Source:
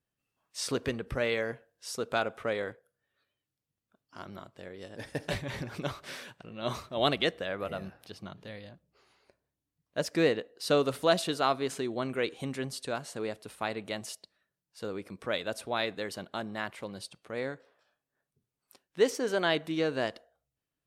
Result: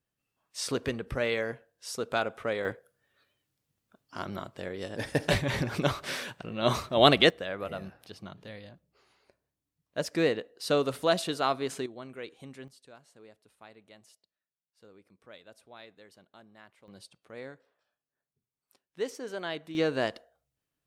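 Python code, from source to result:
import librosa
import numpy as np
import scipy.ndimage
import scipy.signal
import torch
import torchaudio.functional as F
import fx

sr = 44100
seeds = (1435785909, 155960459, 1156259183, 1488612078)

y = fx.gain(x, sr, db=fx.steps((0.0, 0.5), (2.65, 7.5), (7.3, -0.5), (11.86, -10.5), (12.68, -18.5), (16.88, -8.0), (19.75, 2.0)))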